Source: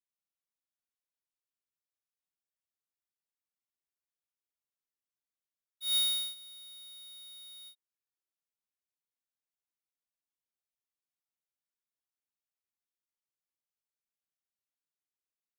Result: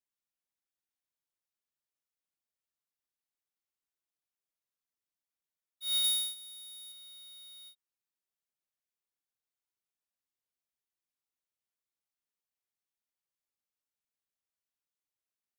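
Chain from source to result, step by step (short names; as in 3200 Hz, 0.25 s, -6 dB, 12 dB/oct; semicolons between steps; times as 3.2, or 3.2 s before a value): 6.04–6.92 bell 9400 Hz +10.5 dB 1.1 oct; gain -1.5 dB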